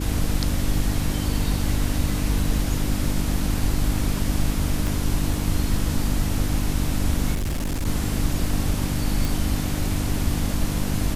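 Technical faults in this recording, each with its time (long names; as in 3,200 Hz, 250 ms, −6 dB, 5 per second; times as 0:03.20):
mains hum 50 Hz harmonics 6 −27 dBFS
0:04.87: click
0:07.34–0:07.87: clipping −22 dBFS
0:09.25: click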